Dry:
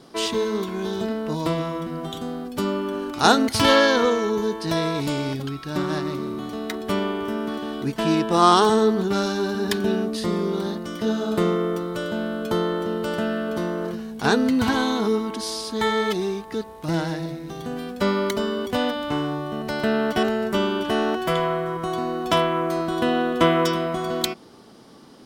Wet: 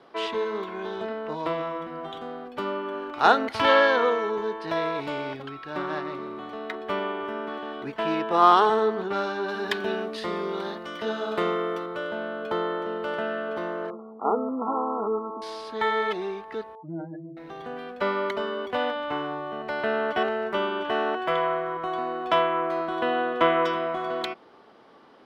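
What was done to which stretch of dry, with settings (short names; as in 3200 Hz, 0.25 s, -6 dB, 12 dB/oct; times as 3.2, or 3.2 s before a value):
9.48–11.86 high shelf 2600 Hz +8.5 dB
13.9–15.42 brick-wall FIR band-pass 180–1400 Hz
16.75–17.37 spectral contrast raised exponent 3
whole clip: three-band isolator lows -15 dB, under 410 Hz, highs -24 dB, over 3100 Hz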